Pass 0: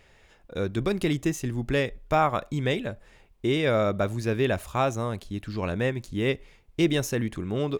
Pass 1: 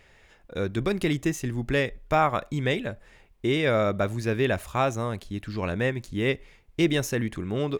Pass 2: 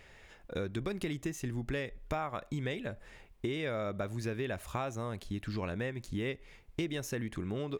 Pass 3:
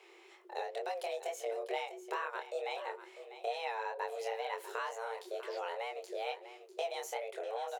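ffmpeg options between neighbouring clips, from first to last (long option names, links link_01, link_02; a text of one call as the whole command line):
ffmpeg -i in.wav -af "equalizer=frequency=1900:width_type=o:width=0.77:gain=3" out.wav
ffmpeg -i in.wav -af "acompressor=threshold=-33dB:ratio=6" out.wav
ffmpeg -i in.wav -af "flanger=delay=20:depth=7.7:speed=2.2,afreqshift=340,aecho=1:1:647:0.224" out.wav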